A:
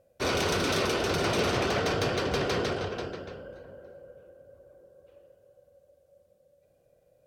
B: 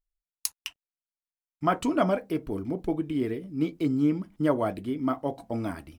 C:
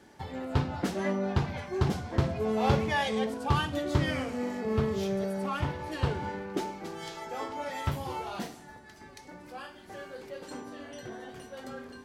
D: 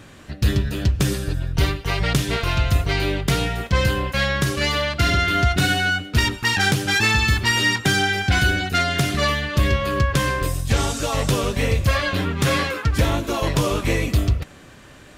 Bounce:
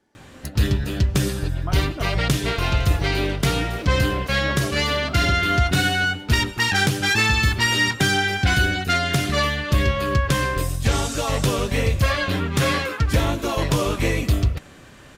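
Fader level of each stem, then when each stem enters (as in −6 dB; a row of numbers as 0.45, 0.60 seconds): −13.0, −9.5, −12.0, −0.5 decibels; 2.40, 0.00, 0.00, 0.15 seconds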